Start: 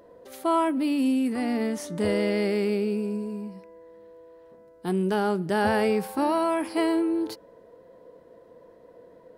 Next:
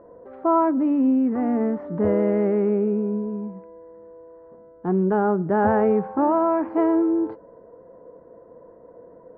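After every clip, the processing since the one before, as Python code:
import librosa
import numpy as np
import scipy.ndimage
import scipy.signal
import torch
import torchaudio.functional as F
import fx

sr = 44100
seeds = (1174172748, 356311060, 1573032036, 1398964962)

y = scipy.signal.sosfilt(scipy.signal.butter(4, 1400.0, 'lowpass', fs=sr, output='sos'), x)
y = y * librosa.db_to_amplitude(4.5)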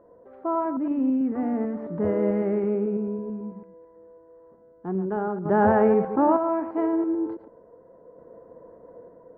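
y = fx.reverse_delay(x, sr, ms=110, wet_db=-10.0)
y = fx.tremolo_random(y, sr, seeds[0], hz=1.1, depth_pct=55)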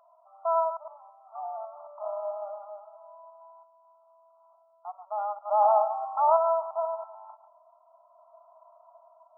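y = fx.brickwall_bandpass(x, sr, low_hz=600.0, high_hz=1400.0)
y = y * librosa.db_to_amplitude(1.5)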